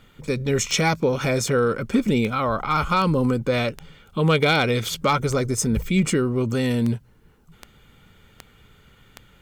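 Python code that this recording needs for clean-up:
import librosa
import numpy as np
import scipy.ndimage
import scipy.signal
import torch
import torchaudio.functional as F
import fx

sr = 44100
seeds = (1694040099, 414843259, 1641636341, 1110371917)

y = fx.fix_declip(x, sr, threshold_db=-10.5)
y = fx.fix_declick_ar(y, sr, threshold=10.0)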